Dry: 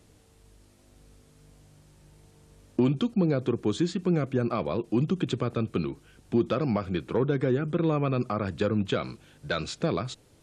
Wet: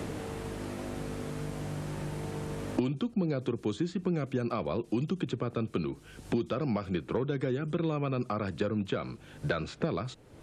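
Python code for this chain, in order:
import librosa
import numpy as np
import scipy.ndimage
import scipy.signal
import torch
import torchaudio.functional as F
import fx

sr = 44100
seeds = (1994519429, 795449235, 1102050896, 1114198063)

y = fx.band_squash(x, sr, depth_pct=100)
y = y * librosa.db_to_amplitude(-5.0)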